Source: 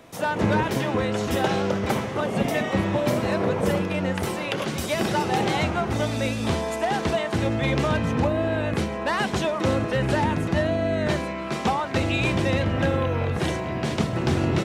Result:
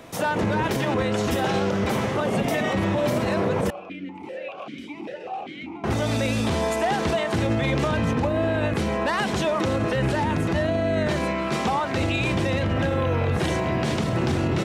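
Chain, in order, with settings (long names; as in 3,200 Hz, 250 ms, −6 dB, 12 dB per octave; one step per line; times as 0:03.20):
brickwall limiter −20 dBFS, peak gain reduction 9.5 dB
0:03.70–0:05.84: formant filter that steps through the vowels 5.1 Hz
level +5 dB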